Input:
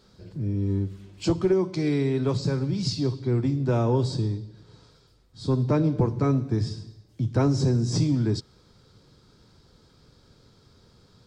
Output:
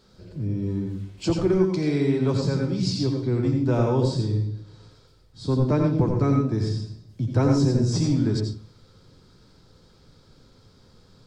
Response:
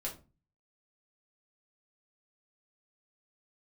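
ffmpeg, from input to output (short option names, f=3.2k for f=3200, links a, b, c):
-filter_complex "[0:a]asplit=2[a][b];[1:a]atrim=start_sample=2205,adelay=85[c];[b][c]afir=irnorm=-1:irlink=0,volume=-3.5dB[d];[a][d]amix=inputs=2:normalize=0"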